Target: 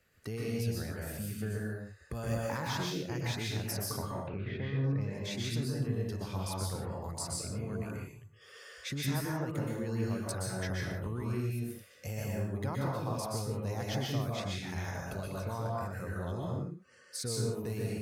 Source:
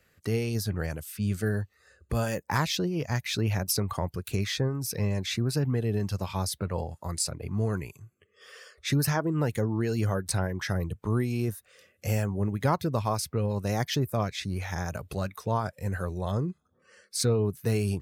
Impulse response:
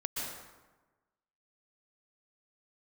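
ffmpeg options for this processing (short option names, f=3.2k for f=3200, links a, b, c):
-filter_complex "[0:a]asettb=1/sr,asplit=3[a][b][c];[a]atrim=end=3.974[d];[b]atrim=start=3.97:end=5.01,asetpts=PTS-STARTPTS,afade=t=in:d=0.004:c=qsin,afade=t=out:st=1.036:d=0.004:c=qsin,lowpass=f=2.4k:w=0.5412,lowpass=f=2.4k:w=1.3066[e];[c]atrim=start=5.006[f];[d][e]acrossfade=d=0.004:c1=hsin:c2=qsin[g];[g][f]acrossfade=d=0.004:c1=qsin:c2=hsin,acompressor=threshold=-33dB:ratio=2.5[h];[1:a]atrim=start_sample=2205,afade=t=out:st=0.37:d=0.01,atrim=end_sample=16758[i];[h][i]afir=irnorm=-1:irlink=0,volume=-4dB"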